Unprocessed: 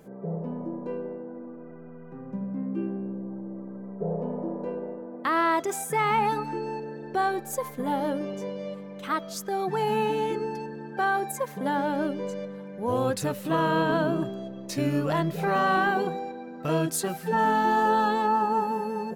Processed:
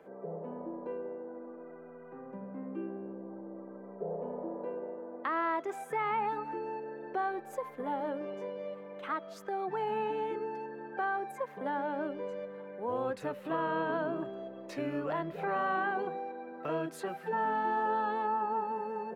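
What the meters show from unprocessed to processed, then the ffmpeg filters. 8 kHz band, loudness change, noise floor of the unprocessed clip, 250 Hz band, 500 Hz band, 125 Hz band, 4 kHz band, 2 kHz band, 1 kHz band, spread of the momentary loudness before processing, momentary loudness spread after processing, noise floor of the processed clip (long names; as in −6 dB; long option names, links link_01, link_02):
below −20 dB, −8.0 dB, −42 dBFS, −10.5 dB, −6.5 dB, −15.5 dB, −14.5 dB, −8.0 dB, −7.5 dB, 14 LU, 12 LU, −49 dBFS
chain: -filter_complex "[0:a]acrossover=split=320 2800:gain=0.126 1 0.112[link_01][link_02][link_03];[link_01][link_02][link_03]amix=inputs=3:normalize=0,acrossover=split=240[link_04][link_05];[link_05]acompressor=threshold=-43dB:ratio=1.5[link_06];[link_04][link_06]amix=inputs=2:normalize=0"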